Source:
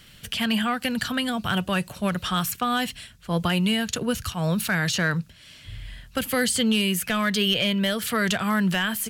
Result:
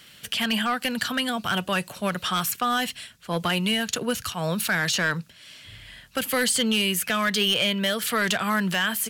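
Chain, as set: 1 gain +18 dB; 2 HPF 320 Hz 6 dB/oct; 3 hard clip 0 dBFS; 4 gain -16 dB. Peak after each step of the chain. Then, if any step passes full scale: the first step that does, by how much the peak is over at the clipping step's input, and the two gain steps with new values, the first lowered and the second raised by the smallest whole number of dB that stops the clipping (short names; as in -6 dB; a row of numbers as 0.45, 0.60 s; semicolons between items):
+5.5, +6.5, 0.0, -16.0 dBFS; step 1, 6.5 dB; step 1 +11 dB, step 4 -9 dB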